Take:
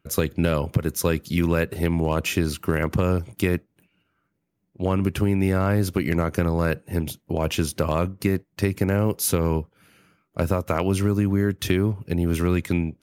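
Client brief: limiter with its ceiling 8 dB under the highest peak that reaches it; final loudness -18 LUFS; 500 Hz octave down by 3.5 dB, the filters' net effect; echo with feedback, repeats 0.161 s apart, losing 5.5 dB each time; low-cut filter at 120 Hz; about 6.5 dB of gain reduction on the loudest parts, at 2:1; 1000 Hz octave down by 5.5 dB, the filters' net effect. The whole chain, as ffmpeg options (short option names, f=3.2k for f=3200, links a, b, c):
-af "highpass=120,equalizer=f=500:t=o:g=-3,equalizer=f=1k:t=o:g=-6.5,acompressor=threshold=-30dB:ratio=2,alimiter=limit=-20.5dB:level=0:latency=1,aecho=1:1:161|322|483|644|805|966|1127:0.531|0.281|0.149|0.079|0.0419|0.0222|0.0118,volume=13.5dB"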